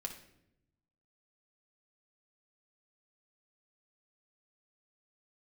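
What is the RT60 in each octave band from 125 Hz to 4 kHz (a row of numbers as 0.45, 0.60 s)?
1.4, 1.2, 0.95, 0.65, 0.70, 0.55 s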